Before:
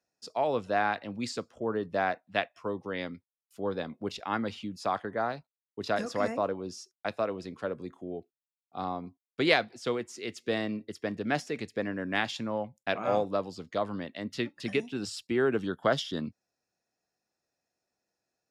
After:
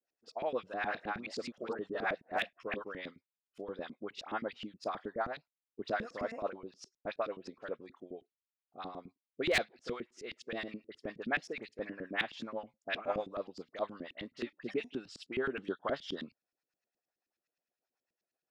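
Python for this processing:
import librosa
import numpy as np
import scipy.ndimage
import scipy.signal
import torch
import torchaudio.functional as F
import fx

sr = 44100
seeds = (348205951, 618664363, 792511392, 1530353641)

y = fx.reverse_delay(x, sr, ms=174, wet_db=-1.5, at=(0.65, 2.89))
y = fx.high_shelf(y, sr, hz=2200.0, db=9.0)
y = fx.hpss(y, sr, part='harmonic', gain_db=-4)
y = fx.high_shelf(y, sr, hz=8200.0, db=-6.0)
y = fx.dispersion(y, sr, late='highs', ms=44.0, hz=2200.0)
y = fx.filter_lfo_bandpass(y, sr, shape='saw_up', hz=9.5, low_hz=220.0, high_hz=2900.0, q=1.1)
y = 10.0 ** (-18.0 / 20.0) * (np.abs((y / 10.0 ** (-18.0 / 20.0) + 3.0) % 4.0 - 2.0) - 1.0)
y = fx.rotary(y, sr, hz=8.0)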